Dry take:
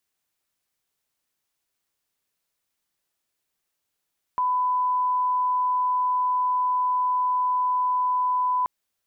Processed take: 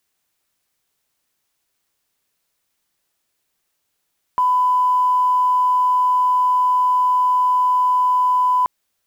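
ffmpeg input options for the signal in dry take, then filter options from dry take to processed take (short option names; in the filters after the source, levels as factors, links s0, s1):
-f lavfi -i "sine=f=1000:d=4.28:r=44100,volume=-1.94dB"
-af "acontrast=85,acrusher=bits=9:mode=log:mix=0:aa=0.000001"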